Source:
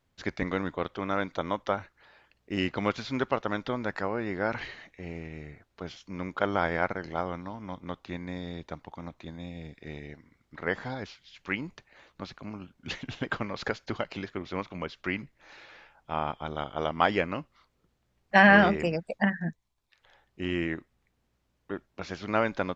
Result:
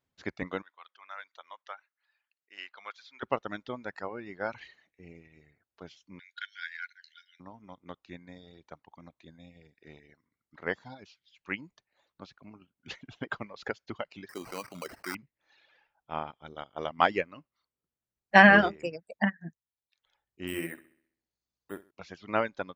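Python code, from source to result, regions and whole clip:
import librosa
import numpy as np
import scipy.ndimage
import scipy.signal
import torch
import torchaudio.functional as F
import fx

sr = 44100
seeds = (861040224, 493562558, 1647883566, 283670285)

y = fx.chain(x, sr, fx.highpass(hz=1300.0, slope=12),
    fx.high_shelf(hz=5100.0, db=-9.5), at=(0.62, 3.23))
y = fx.chain(y, sr, fx.brickwall_highpass(low_hz=1400.0),
    fx.peak_eq(hz=3900.0, db=11.5, octaves=0.44), at=(6.19, 7.4))
y = fx.chain(y, sr, fx.highpass(hz=270.0, slope=6),
    fx.sample_hold(seeds[0], rate_hz=3500.0, jitter_pct=0),
    fx.env_flatten(amount_pct=70), at=(14.29, 15.15))
y = fx.chain(y, sr, fx.peak_eq(hz=5300.0, db=9.5, octaves=1.0),
    fx.resample_bad(factor=4, down='filtered', up='hold'),
    fx.room_flutter(wall_m=11.2, rt60_s=0.65), at=(20.47, 21.91))
y = fx.highpass(y, sr, hz=99.0, slope=6)
y = fx.dereverb_blind(y, sr, rt60_s=1.8)
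y = fx.upward_expand(y, sr, threshold_db=-39.0, expansion=1.5)
y = F.gain(torch.from_numpy(y), 3.0).numpy()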